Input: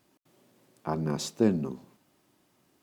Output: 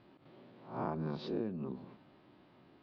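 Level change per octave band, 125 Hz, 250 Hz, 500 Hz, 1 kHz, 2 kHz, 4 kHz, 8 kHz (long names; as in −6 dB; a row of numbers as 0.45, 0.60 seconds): −8.5 dB, −10.0 dB, −8.5 dB, −4.5 dB, −8.5 dB, −11.5 dB, below −35 dB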